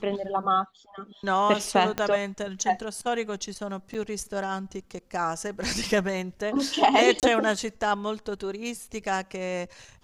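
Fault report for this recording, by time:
1.98 pop -12 dBFS
3.94–3.95 gap 7.4 ms
7.2–7.23 gap 28 ms

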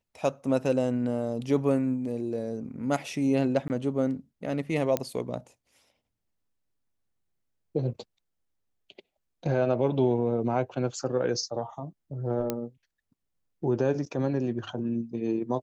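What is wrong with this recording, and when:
3.68–3.7 gap 19 ms
4.97 pop -11 dBFS
12.5 pop -13 dBFS

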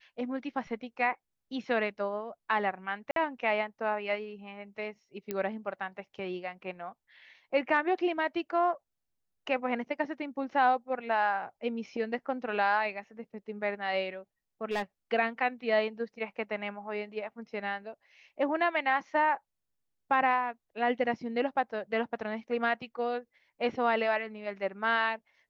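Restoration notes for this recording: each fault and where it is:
3.11–3.16 gap 52 ms
5.31 pop -19 dBFS
14.71–14.82 clipped -27 dBFS

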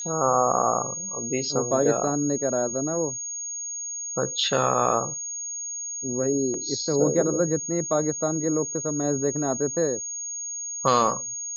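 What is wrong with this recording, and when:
tone 6600 Hz -30 dBFS

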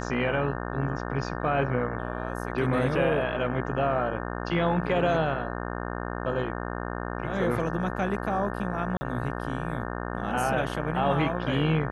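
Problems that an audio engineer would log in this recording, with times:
buzz 60 Hz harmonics 30 -33 dBFS
8.97–9.01 gap 40 ms

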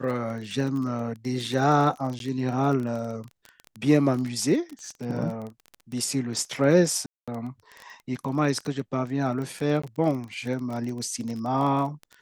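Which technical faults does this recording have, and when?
crackle 22/s -30 dBFS
2.19–2.2 gap 12 ms
7.06–7.28 gap 0.216 s
9.82–9.84 gap 15 ms

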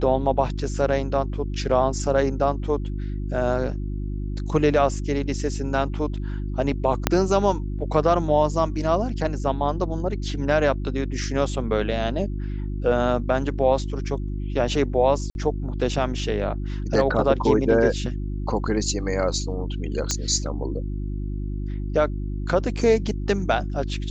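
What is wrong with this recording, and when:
hum 50 Hz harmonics 7 -28 dBFS
7.07 pop -2 dBFS
15.3–15.35 gap 51 ms
20.11 pop -9 dBFS

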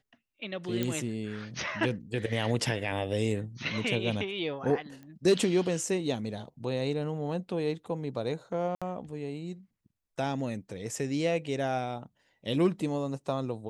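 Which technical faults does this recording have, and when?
0.83 pop -16 dBFS
5.03 pop -35 dBFS
8.75–8.82 gap 66 ms

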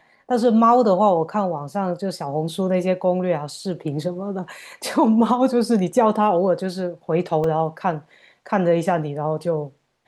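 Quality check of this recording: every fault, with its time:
7.44 gap 2.4 ms

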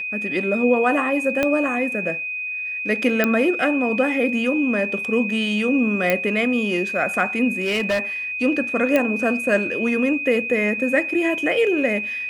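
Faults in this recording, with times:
tone 2500 Hz -25 dBFS
1.43 pop -7 dBFS
3.24 pop -5 dBFS
6.1 pop -5 dBFS
7.49–8 clipped -17 dBFS
8.96 pop -7 dBFS

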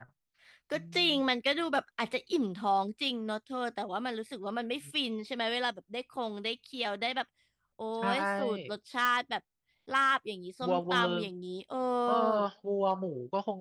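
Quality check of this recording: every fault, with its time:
9.05 pop -16 dBFS

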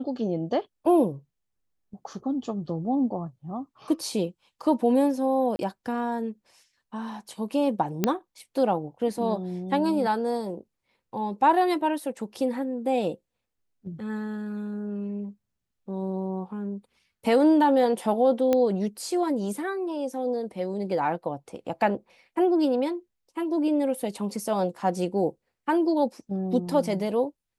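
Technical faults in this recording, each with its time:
5.56–5.59 gap 30 ms
8.04 pop -8 dBFS
18.53 pop -11 dBFS

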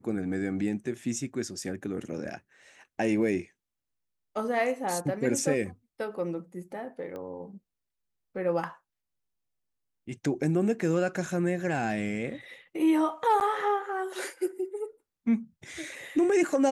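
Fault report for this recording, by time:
7.16 pop -28 dBFS
13.4–13.41 gap 9.8 ms

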